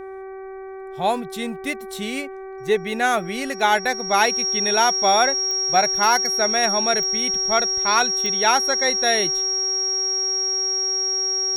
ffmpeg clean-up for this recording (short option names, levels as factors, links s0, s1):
-af "adeclick=t=4,bandreject=f=383.3:t=h:w=4,bandreject=f=766.6:t=h:w=4,bandreject=f=1149.9:t=h:w=4,bandreject=f=1533.2:t=h:w=4,bandreject=f=1916.5:t=h:w=4,bandreject=f=2299.8:t=h:w=4,bandreject=f=5600:w=30"